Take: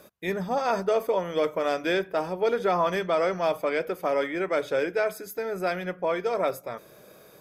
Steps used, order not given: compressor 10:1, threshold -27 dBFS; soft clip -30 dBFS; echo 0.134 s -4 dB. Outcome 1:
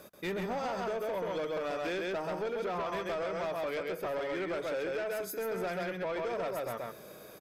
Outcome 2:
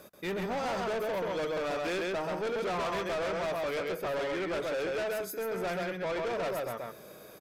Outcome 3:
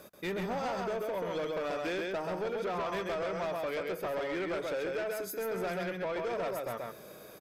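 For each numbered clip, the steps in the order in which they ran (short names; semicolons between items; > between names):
echo > compressor > soft clip; echo > soft clip > compressor; compressor > echo > soft clip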